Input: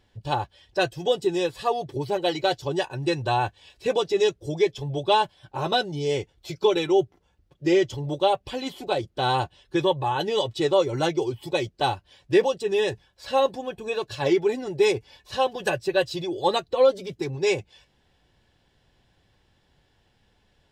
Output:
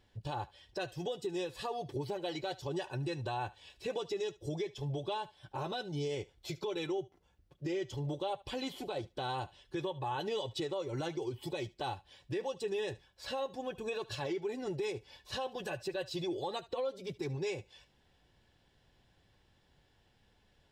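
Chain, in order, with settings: compressor 6:1, threshold -27 dBFS, peak gain reduction 13 dB; on a send: thinning echo 73 ms, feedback 15%, high-pass 650 Hz, level -19.5 dB; on the sum: limiter -23.5 dBFS, peak gain reduction 7.5 dB; gain -4.5 dB

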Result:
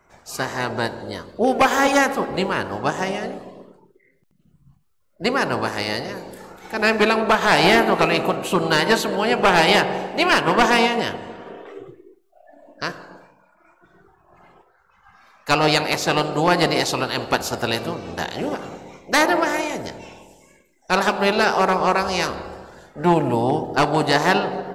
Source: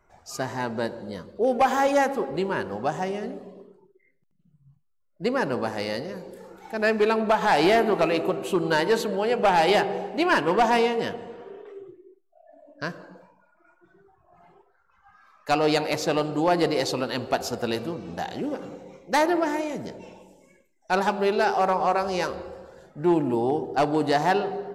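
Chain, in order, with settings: spectral limiter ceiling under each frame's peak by 13 dB; gain +4.5 dB

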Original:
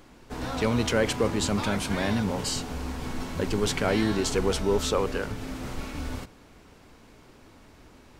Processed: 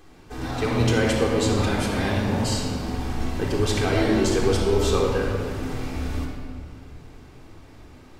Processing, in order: shoebox room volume 3400 m³, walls mixed, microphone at 3.7 m; gain -2.5 dB

